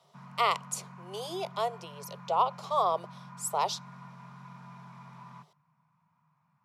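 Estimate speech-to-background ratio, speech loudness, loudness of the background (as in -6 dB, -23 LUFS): 17.5 dB, -31.5 LUFS, -49.0 LUFS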